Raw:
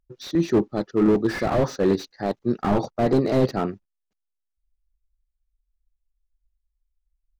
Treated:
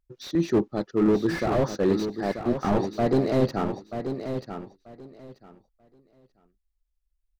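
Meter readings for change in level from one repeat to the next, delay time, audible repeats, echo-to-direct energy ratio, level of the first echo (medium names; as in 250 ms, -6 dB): -14.5 dB, 936 ms, 2, -8.5 dB, -8.5 dB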